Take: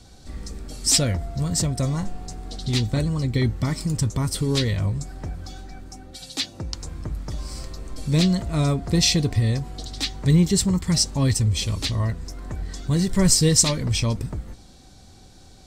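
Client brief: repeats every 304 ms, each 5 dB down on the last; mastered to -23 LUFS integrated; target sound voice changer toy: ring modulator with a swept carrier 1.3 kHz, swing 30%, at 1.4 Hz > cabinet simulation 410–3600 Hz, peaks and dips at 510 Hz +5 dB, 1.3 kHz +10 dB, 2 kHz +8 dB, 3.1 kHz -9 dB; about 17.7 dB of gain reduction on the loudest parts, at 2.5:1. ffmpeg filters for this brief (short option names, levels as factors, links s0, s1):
-af "acompressor=threshold=0.00891:ratio=2.5,aecho=1:1:304|608|912|1216|1520|1824|2128:0.562|0.315|0.176|0.0988|0.0553|0.031|0.0173,aeval=exprs='val(0)*sin(2*PI*1300*n/s+1300*0.3/1.4*sin(2*PI*1.4*n/s))':c=same,highpass=410,equalizer=f=510:t=q:w=4:g=5,equalizer=f=1300:t=q:w=4:g=10,equalizer=f=2000:t=q:w=4:g=8,equalizer=f=3100:t=q:w=4:g=-9,lowpass=f=3600:w=0.5412,lowpass=f=3600:w=1.3066,volume=2.99"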